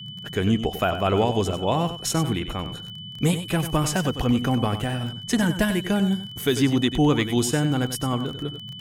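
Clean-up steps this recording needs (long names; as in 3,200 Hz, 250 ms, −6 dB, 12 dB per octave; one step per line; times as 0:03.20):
click removal
notch filter 3,000 Hz, Q 30
noise reduction from a noise print 30 dB
echo removal 95 ms −10.5 dB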